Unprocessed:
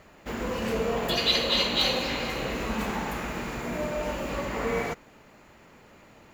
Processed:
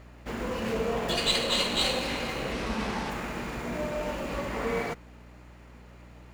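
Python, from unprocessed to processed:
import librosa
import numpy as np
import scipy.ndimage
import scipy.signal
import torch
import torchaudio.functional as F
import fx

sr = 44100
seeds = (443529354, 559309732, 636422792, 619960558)

y = fx.delta_mod(x, sr, bps=32000, step_db=-30.5, at=(2.52, 3.1))
y = fx.add_hum(y, sr, base_hz=60, snr_db=19)
y = fx.running_max(y, sr, window=3)
y = F.gain(torch.from_numpy(y), -1.5).numpy()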